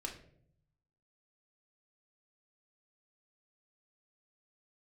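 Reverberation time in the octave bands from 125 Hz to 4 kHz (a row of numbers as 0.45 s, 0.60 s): 1.2 s, 0.95 s, 0.75 s, 0.50 s, 0.45 s, 0.40 s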